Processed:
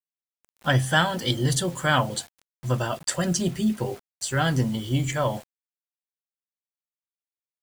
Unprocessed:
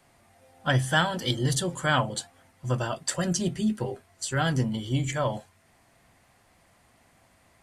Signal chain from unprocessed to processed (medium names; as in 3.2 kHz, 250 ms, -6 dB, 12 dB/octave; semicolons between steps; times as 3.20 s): bit crusher 8-bit; trim +2.5 dB